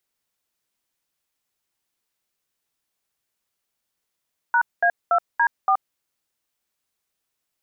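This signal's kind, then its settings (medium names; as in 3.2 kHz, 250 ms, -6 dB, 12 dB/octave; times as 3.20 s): DTMF "#A2D4", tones 75 ms, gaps 210 ms, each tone -17.5 dBFS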